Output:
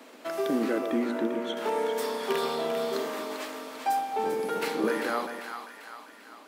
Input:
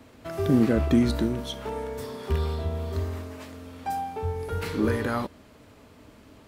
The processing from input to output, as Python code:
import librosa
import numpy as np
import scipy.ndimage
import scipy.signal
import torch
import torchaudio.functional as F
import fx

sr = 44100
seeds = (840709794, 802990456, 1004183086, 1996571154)

y = fx.octave_divider(x, sr, octaves=1, level_db=4.0, at=(4.18, 4.87))
y = scipy.signal.sosfilt(scipy.signal.bessel(8, 380.0, 'highpass', norm='mag', fs=sr, output='sos'), y)
y = fx.rider(y, sr, range_db=4, speed_s=0.5)
y = fx.moving_average(y, sr, points=9, at=(0.78, 1.57))
y = fx.echo_split(y, sr, split_hz=830.0, low_ms=128, high_ms=395, feedback_pct=52, wet_db=-7)
y = y * 10.0 ** (3.0 / 20.0)